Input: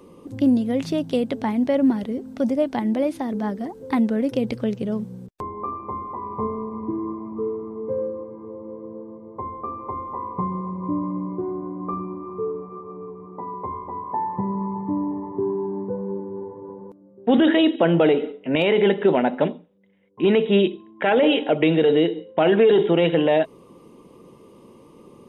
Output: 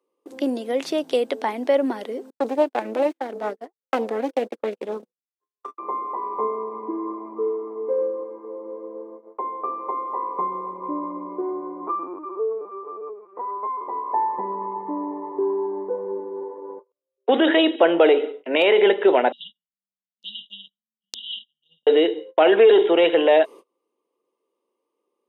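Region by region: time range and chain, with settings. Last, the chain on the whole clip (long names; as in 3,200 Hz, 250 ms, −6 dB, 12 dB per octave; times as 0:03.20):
0:02.30–0:05.78: running median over 9 samples + noise gate −27 dBFS, range −42 dB + highs frequency-modulated by the lows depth 0.49 ms
0:11.87–0:13.81: high-pass filter 150 Hz 6 dB per octave + linear-prediction vocoder at 8 kHz pitch kept
0:16.79–0:17.29: high-pass filter 450 Hz + phaser with its sweep stopped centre 1,200 Hz, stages 8
0:19.32–0:21.87: auto-filter low-pass saw down 1.1 Hz 460–4,600 Hz + linear-phase brick-wall band-stop 210–2,800 Hz + every bin compressed towards the loudest bin 2 to 1
whole clip: noise gate −39 dBFS, range −30 dB; high-pass filter 360 Hz 24 dB per octave; level +3.5 dB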